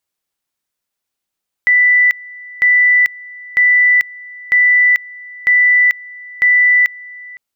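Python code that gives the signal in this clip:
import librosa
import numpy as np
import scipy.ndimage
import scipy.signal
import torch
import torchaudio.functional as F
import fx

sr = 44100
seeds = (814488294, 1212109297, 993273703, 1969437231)

y = fx.two_level_tone(sr, hz=1980.0, level_db=-7.0, drop_db=23.0, high_s=0.44, low_s=0.51, rounds=6)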